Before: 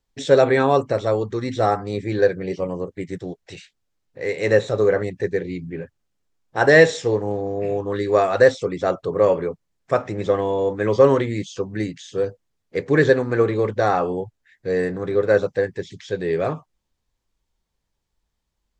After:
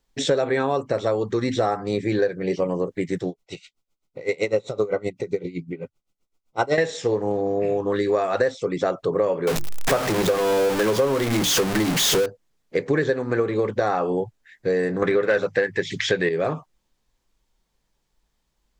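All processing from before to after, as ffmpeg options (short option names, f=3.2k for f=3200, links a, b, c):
-filter_complex "[0:a]asettb=1/sr,asplit=3[a][b][c];[a]atrim=end=3.284[d];[b]atrim=start=3.28:end=6.78,asetpts=PTS-STARTPTS,afade=t=in:d=0.004:c=qsin,afade=t=out:st=3.496:d=0.004:c=qsin,asuperstop=centerf=1700:order=8:qfactor=4.3,aeval=exprs='val(0)*pow(10,-20*(0.5-0.5*cos(2*PI*7.8*n/s))/20)':c=same[e];[c]atrim=start=6.776[f];[d][e]acrossfade=d=0.004:c1=hsin:c2=qsin[g];[g][f]acrossfade=d=0.004:c1=qsin:c2=hsin,asettb=1/sr,asplit=3[h][i][j];[h]atrim=end=9.474[k];[i]atrim=start=9.47:end=12.26,asetpts=PTS-STARTPTS,afade=t=in:d=0.004:c=qsin,afade=t=out:st=2.786:d=0.004:c=qsin,aeval=exprs='val(0)+0.5*0.133*sgn(val(0))':c=same,bandreject=f=50:t=h:w=6,bandreject=f=100:t=h:w=6,bandreject=f=150:t=h:w=6,bandreject=f=200:t=h:w=6,bandreject=f=250:t=h:w=6,bandreject=f=300:t=h:w=6,bandreject=f=350:t=h:w=6[l];[j]atrim=start=12.256[m];[k][l]acrossfade=d=0.004:c1=hsin:c2=qsin[n];[n][m]acrossfade=d=0.004:c1=qsin:c2=hsin,asettb=1/sr,asplit=3[o][p][q];[o]atrim=end=15.024[r];[p]atrim=start=15.02:end=16.29,asetpts=PTS-STARTPTS,afade=t=in:d=0.004:c=qsin,afade=t=out:st=1.266:d=0.004:c=qsin,equalizer=f=2k:t=o:w=1.2:g=10,bandreject=f=50:t=h:w=6,bandreject=f=100:t=h:w=6,bandreject=f=150:t=h:w=6,acontrast=78[s];[q]atrim=start=16.286[t];[r][s]acrossfade=d=0.004:c1=hsin:c2=qsin[u];[u][t]acrossfade=d=0.004:c1=qsin:c2=hsin,equalizer=f=82:w=3:g=-15,acompressor=threshold=-24dB:ratio=6,volume=5.5dB"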